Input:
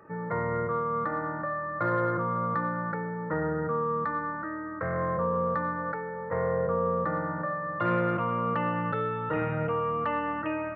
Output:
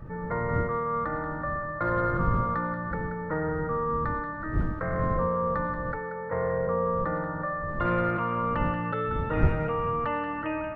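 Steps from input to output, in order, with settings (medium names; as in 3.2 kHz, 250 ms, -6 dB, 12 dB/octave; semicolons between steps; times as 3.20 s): wind noise 130 Hz -34 dBFS; thinning echo 182 ms, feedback 43%, high-pass 1 kHz, level -8 dB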